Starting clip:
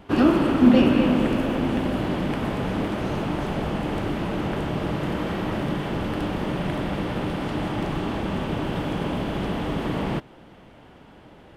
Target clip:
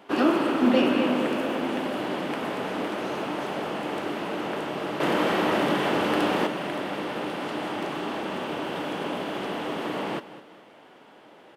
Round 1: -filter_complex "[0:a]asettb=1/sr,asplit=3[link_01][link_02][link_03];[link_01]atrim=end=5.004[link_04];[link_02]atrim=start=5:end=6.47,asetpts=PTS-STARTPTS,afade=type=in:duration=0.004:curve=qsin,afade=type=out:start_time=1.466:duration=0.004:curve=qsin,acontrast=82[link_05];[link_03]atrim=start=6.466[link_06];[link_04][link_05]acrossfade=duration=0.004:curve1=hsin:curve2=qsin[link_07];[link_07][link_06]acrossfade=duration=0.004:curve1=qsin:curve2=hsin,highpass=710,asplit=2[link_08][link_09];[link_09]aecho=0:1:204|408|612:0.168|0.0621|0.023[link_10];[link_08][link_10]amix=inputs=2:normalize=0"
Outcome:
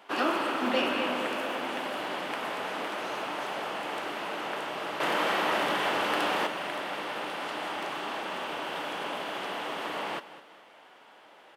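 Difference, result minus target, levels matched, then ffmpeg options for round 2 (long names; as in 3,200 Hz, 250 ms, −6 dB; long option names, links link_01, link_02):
250 Hz band −7.0 dB
-filter_complex "[0:a]asettb=1/sr,asplit=3[link_01][link_02][link_03];[link_01]atrim=end=5.004[link_04];[link_02]atrim=start=5:end=6.47,asetpts=PTS-STARTPTS,afade=type=in:duration=0.004:curve=qsin,afade=type=out:start_time=1.466:duration=0.004:curve=qsin,acontrast=82[link_05];[link_03]atrim=start=6.466[link_06];[link_04][link_05]acrossfade=duration=0.004:curve1=hsin:curve2=qsin[link_07];[link_07][link_06]acrossfade=duration=0.004:curve1=qsin:curve2=hsin,highpass=340,asplit=2[link_08][link_09];[link_09]aecho=0:1:204|408|612:0.168|0.0621|0.023[link_10];[link_08][link_10]amix=inputs=2:normalize=0"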